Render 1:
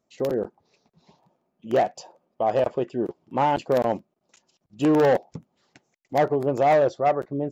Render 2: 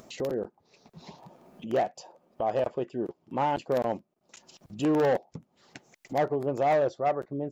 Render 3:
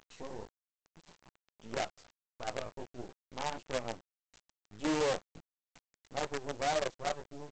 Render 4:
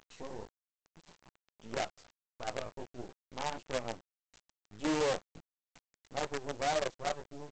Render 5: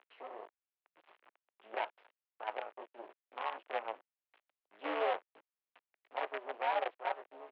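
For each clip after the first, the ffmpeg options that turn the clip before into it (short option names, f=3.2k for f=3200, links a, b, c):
-af "acompressor=mode=upward:threshold=-26dB:ratio=2.5,volume=-5.5dB"
-af "flanger=delay=15.5:depth=3.6:speed=1.6,aresample=16000,acrusher=bits=5:dc=4:mix=0:aa=0.000001,aresample=44100,volume=-7dB"
-af anull
-af "highpass=f=390:t=q:w=0.5412,highpass=f=390:t=q:w=1.307,lowpass=f=2.9k:t=q:w=0.5176,lowpass=f=2.9k:t=q:w=0.7071,lowpass=f=2.9k:t=q:w=1.932,afreqshift=100,aeval=exprs='val(0)*sin(2*PI*110*n/s)':c=same,volume=2dB"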